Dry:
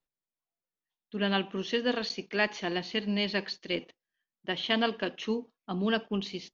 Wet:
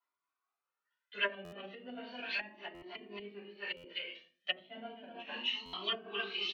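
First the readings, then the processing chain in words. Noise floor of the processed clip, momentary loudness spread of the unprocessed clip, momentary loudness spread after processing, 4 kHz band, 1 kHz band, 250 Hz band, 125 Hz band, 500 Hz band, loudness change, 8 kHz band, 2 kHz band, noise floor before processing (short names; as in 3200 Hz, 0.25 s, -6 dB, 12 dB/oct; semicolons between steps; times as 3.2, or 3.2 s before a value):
under -85 dBFS, 7 LU, 13 LU, -4.0 dB, -10.0 dB, -19.0 dB, -21.5 dB, -13.0 dB, -8.5 dB, n/a, -5.5 dB, under -85 dBFS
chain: HPF 220 Hz 12 dB/oct; high shelf 4300 Hz +6.5 dB; echo 0.256 s -7 dB; band-pass sweep 1200 Hz -> 2900 Hz, 0.78–1.41; doubler 20 ms -9 dB; shoebox room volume 270 m³, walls furnished, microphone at 6.6 m; treble ducked by the level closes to 320 Hz, closed at -23 dBFS; stuck buffer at 1.44/2.74/3.76/5.65, samples 512, times 6; cascading flanger rising 0.35 Hz; gain +6 dB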